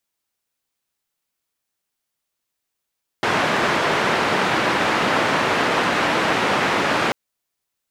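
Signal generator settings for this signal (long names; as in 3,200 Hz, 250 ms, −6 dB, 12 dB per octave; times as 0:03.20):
band-limited noise 150–1,700 Hz, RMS −19.5 dBFS 3.89 s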